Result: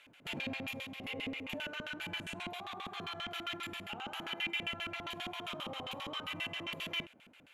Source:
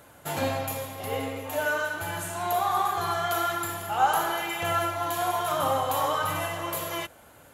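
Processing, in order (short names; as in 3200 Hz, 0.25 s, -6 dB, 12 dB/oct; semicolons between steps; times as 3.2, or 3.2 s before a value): bell 2400 Hz +9 dB 0.52 oct; limiter -21.5 dBFS, peak gain reduction 10 dB; LFO band-pass square 7.5 Hz 230–3000 Hz; gain +1 dB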